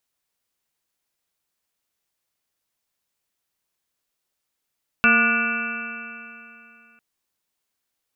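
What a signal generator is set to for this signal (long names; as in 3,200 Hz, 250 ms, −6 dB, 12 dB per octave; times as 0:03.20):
stiff-string partials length 1.95 s, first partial 228 Hz, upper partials −10/−9/−19/−1.5/6/−10/−20/−1/4 dB, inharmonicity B 0.0036, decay 2.80 s, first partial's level −21 dB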